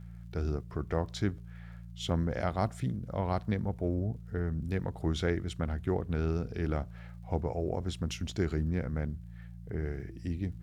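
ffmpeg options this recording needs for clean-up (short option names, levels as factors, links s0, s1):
-af "adeclick=t=4,bandreject=f=57.5:t=h:w=4,bandreject=f=115:t=h:w=4,bandreject=f=172.5:t=h:w=4"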